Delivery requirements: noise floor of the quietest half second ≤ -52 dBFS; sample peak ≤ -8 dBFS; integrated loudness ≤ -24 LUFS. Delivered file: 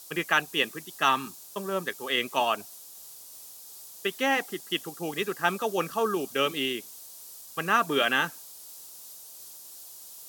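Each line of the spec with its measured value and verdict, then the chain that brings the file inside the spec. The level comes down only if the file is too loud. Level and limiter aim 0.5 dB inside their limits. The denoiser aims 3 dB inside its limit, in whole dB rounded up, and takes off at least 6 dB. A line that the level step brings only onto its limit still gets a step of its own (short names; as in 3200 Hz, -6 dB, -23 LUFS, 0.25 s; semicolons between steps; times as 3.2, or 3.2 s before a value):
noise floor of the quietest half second -47 dBFS: fail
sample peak -7.0 dBFS: fail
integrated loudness -28.0 LUFS: OK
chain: denoiser 8 dB, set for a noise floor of -47 dBFS; limiter -8.5 dBFS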